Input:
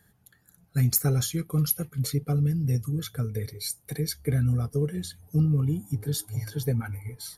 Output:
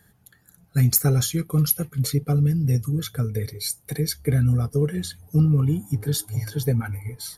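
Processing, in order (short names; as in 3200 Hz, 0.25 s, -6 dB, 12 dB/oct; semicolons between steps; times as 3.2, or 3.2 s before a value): 4.79–6.17 dynamic EQ 1500 Hz, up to +4 dB, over -48 dBFS, Q 0.75; gain +4.5 dB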